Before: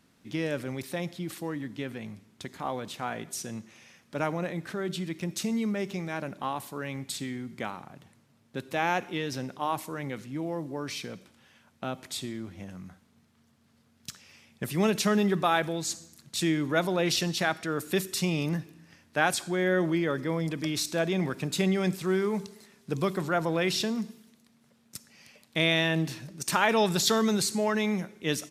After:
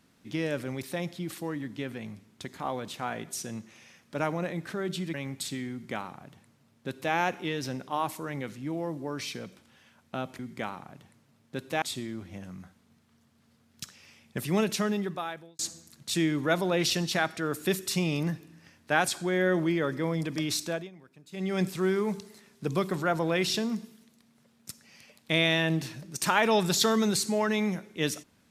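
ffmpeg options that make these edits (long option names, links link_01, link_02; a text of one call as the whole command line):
ffmpeg -i in.wav -filter_complex "[0:a]asplit=7[link_01][link_02][link_03][link_04][link_05][link_06][link_07];[link_01]atrim=end=5.142[link_08];[link_02]atrim=start=6.828:end=12.082[link_09];[link_03]atrim=start=7.398:end=8.832[link_10];[link_04]atrim=start=12.078:end=15.85,asetpts=PTS-STARTPTS,afade=type=out:start_time=2.642:duration=1.13[link_11];[link_05]atrim=start=15.85:end=21.16,asetpts=PTS-STARTPTS,afade=type=in:duration=0.004:curve=hsin,afade=type=out:start_time=5.02:duration=0.29:silence=0.0707946[link_12];[link_06]atrim=start=21.16:end=21.57,asetpts=PTS-STARTPTS,volume=-23dB[link_13];[link_07]atrim=start=21.57,asetpts=PTS-STARTPTS,afade=type=in:duration=0.29:silence=0.0707946[link_14];[link_08][link_09]acrossfade=duration=0.004:curve1=hsin:curve2=hsin[link_15];[link_15][link_10]acrossfade=duration=0.004:curve1=hsin:curve2=hsin[link_16];[link_11][link_12][link_13][link_14]concat=n=4:v=0:a=1[link_17];[link_16][link_17]acrossfade=duration=0.004:curve1=hsin:curve2=hsin" out.wav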